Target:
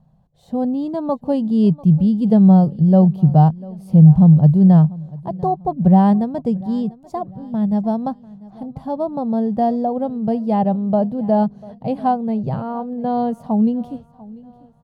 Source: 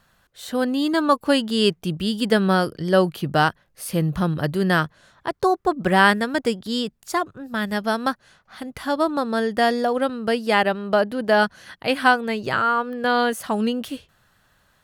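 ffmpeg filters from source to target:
-filter_complex "[0:a]firequalizer=gain_entry='entry(100,0);entry(150,12);entry(320,-10);entry(770,-2);entry(1400,-29);entry(4000,-24);entry(11000,-29)':delay=0.05:min_phase=1,asplit=2[a][b];[b]aecho=0:1:694|1388|2082:0.0891|0.0321|0.0116[c];[a][c]amix=inputs=2:normalize=0,volume=5dB"

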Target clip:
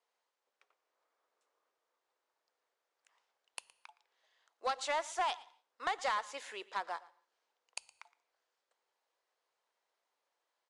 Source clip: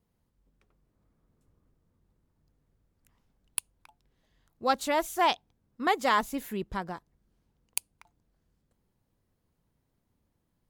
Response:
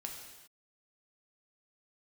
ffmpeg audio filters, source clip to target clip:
-filter_complex "[0:a]highpass=f=410:w=0.5412,highpass=f=410:w=1.3066,acrossover=split=570 7900:gain=0.158 1 0.0891[a][b][c];[a][b][c]amix=inputs=3:normalize=0,acompressor=threshold=-30dB:ratio=12,acrusher=bits=6:mode=log:mix=0:aa=0.000001,asoftclip=type=tanh:threshold=-28dB,aecho=1:1:116:0.0944,asplit=2[d][e];[1:a]atrim=start_sample=2205,asetrate=61740,aresample=44100[f];[e][f]afir=irnorm=-1:irlink=0,volume=-12dB[g];[d][g]amix=inputs=2:normalize=0,aresample=22050,aresample=44100,volume=1dB"

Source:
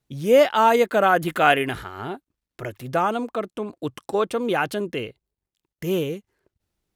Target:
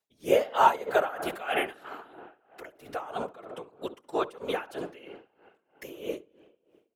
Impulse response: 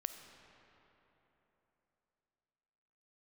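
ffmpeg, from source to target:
-filter_complex "[0:a]highpass=430,asplit=2[a][b];[b]adelay=67,lowpass=f=980:p=1,volume=-6dB,asplit=2[c][d];[d]adelay=67,lowpass=f=980:p=1,volume=0.51,asplit=2[e][f];[f]adelay=67,lowpass=f=980:p=1,volume=0.51,asplit=2[g][h];[h]adelay=67,lowpass=f=980:p=1,volume=0.51,asplit=2[i][j];[j]adelay=67,lowpass=f=980:p=1,volume=0.51,asplit=2[k][l];[l]adelay=67,lowpass=f=980:p=1,volume=0.51[m];[a][c][e][g][i][k][m]amix=inputs=7:normalize=0,asplit=2[n][o];[1:a]atrim=start_sample=2205[p];[o][p]afir=irnorm=-1:irlink=0,volume=-8.5dB[q];[n][q]amix=inputs=2:normalize=0,afftfilt=real='hypot(re,im)*cos(2*PI*random(0))':imag='hypot(re,im)*sin(2*PI*random(1))':win_size=512:overlap=0.75,aeval=exprs='val(0)*pow(10,-19*(0.5-0.5*cos(2*PI*3.1*n/s))/20)':c=same,volume=1.5dB"

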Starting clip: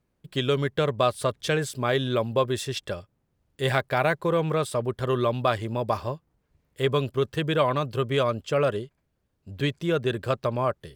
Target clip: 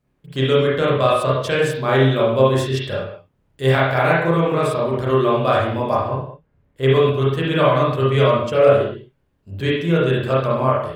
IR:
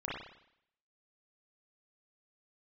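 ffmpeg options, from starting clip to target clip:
-filter_complex "[0:a]asettb=1/sr,asplit=3[a][b][c];[a]atrim=end=5.954[d];[b]atrim=start=5.95:end=6.83,asetpts=PTS-STARTPTS,afade=t=in:d=0.004:c=qsin,afade=t=out:st=0.876:d=0.004:c=qsin,highshelf=f=2.5k:g=-10[e];[c]atrim=start=6.826[f];[d][e]acrossfade=d=0.004:c1=hsin:c2=qsin[g];[g][f]acrossfade=d=0.004:c1=qsin:c2=hsin[h];[1:a]atrim=start_sample=2205,afade=t=out:st=0.31:d=0.01,atrim=end_sample=14112[i];[h][i]afir=irnorm=-1:irlink=0,volume=4dB"

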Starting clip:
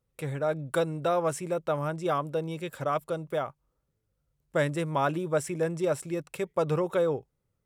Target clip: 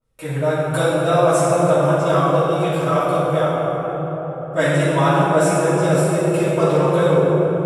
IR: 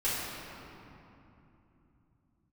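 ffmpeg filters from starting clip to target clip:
-filter_complex "[1:a]atrim=start_sample=2205,asetrate=25578,aresample=44100[a];[0:a][a]afir=irnorm=-1:irlink=0,adynamicequalizer=threshold=0.0282:dfrequency=2800:dqfactor=0.7:tfrequency=2800:tqfactor=0.7:attack=5:release=100:ratio=0.375:range=2:mode=boostabove:tftype=highshelf,volume=-1dB"

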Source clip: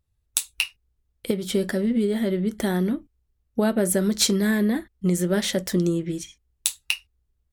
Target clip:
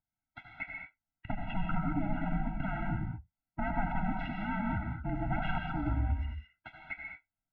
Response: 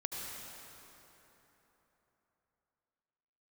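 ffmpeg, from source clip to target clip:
-filter_complex "[0:a]lowshelf=f=88:g=9,aeval=exprs='0.0944*(abs(mod(val(0)/0.0944+3,4)-2)-1)':c=same[a];[1:a]atrim=start_sample=2205,afade=t=out:st=0.28:d=0.01,atrim=end_sample=12789[b];[a][b]afir=irnorm=-1:irlink=0,highpass=f=320:t=q:w=0.5412,highpass=f=320:t=q:w=1.307,lowpass=f=2.7k:t=q:w=0.5176,lowpass=f=2.7k:t=q:w=0.7071,lowpass=f=2.7k:t=q:w=1.932,afreqshift=-400,afftfilt=real='re*eq(mod(floor(b*sr/1024/320),2),0)':imag='im*eq(mod(floor(b*sr/1024/320),2),0)':win_size=1024:overlap=0.75"

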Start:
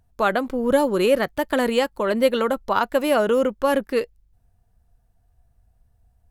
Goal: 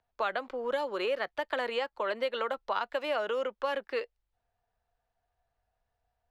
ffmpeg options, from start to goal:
-filter_complex "[0:a]acrossover=split=460 5000:gain=0.1 1 0.0631[a][b][c];[a][b][c]amix=inputs=3:normalize=0,acrossover=split=260|2100|5200[d][e][f][g];[d]acompressor=threshold=-48dB:ratio=4[h];[e]acompressor=threshold=-26dB:ratio=4[i];[f]acompressor=threshold=-36dB:ratio=4[j];[g]acompressor=threshold=-53dB:ratio=4[k];[h][i][j][k]amix=inputs=4:normalize=0,volume=-3.5dB"

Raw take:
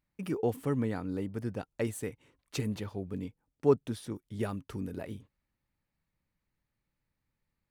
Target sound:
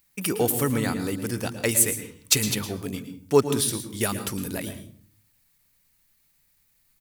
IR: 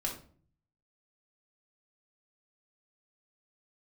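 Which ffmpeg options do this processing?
-filter_complex "[0:a]crystalizer=i=9.5:c=0,atempo=1.1,asplit=2[a][b];[1:a]atrim=start_sample=2205,lowshelf=f=230:g=6,adelay=111[c];[b][c]afir=irnorm=-1:irlink=0,volume=-12.5dB[d];[a][d]amix=inputs=2:normalize=0,volume=4.5dB"

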